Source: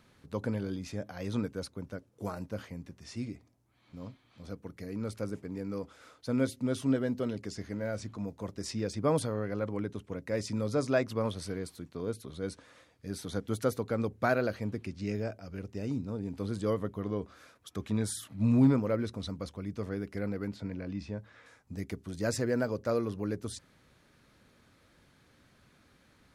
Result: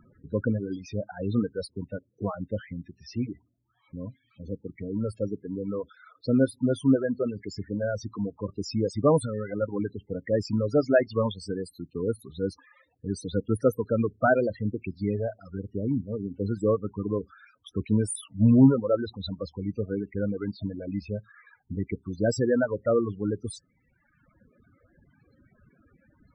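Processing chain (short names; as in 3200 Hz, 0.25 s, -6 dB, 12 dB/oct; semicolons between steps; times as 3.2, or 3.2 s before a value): reverb removal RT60 1.5 s; loudest bins only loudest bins 16; gain +8 dB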